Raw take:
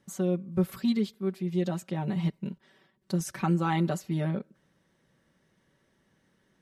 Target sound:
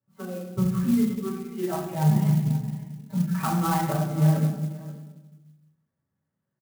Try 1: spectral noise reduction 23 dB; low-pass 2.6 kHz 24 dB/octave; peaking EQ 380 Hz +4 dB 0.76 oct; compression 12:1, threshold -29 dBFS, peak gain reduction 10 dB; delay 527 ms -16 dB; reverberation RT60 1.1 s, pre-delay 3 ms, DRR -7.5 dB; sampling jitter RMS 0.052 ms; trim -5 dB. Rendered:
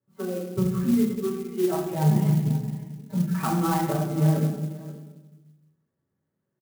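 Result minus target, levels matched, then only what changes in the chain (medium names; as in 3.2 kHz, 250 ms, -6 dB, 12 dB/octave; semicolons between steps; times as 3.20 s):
500 Hz band +4.0 dB
change: peaking EQ 380 Hz -5.5 dB 0.76 oct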